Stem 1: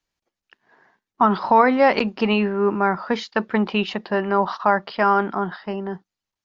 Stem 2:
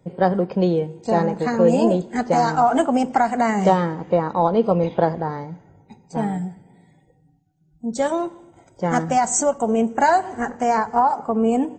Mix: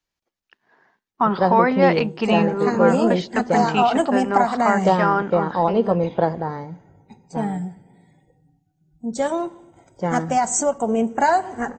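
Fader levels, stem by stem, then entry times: -2.0 dB, -1.0 dB; 0.00 s, 1.20 s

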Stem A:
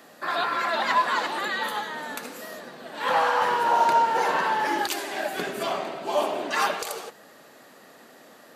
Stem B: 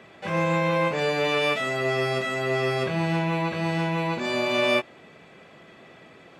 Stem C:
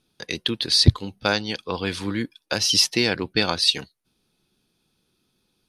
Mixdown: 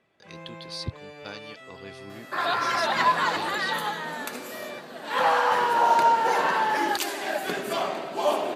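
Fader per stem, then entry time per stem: +0.5 dB, -19.5 dB, -18.5 dB; 2.10 s, 0.00 s, 0.00 s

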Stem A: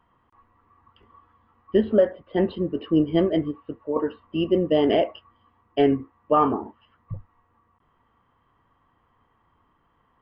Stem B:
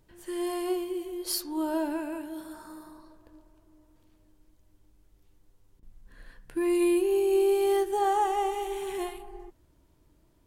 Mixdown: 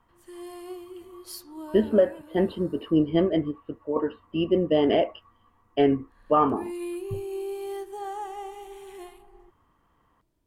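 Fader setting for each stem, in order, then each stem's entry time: -1.5 dB, -9.5 dB; 0.00 s, 0.00 s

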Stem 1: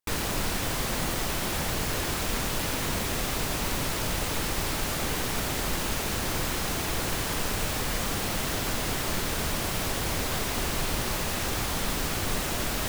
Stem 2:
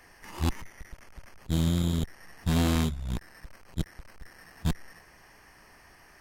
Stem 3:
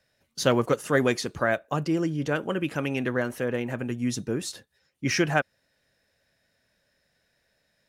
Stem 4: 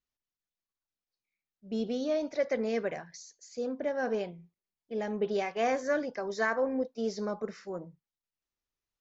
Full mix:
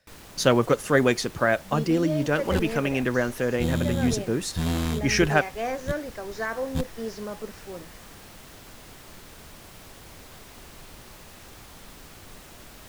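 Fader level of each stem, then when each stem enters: -17.0 dB, -1.5 dB, +2.5 dB, -1.0 dB; 0.00 s, 2.10 s, 0.00 s, 0.00 s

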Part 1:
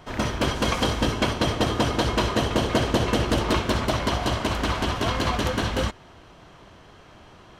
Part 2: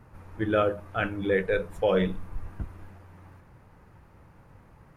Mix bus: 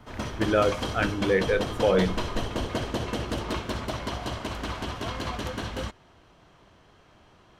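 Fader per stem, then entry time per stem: -8.0 dB, +1.5 dB; 0.00 s, 0.00 s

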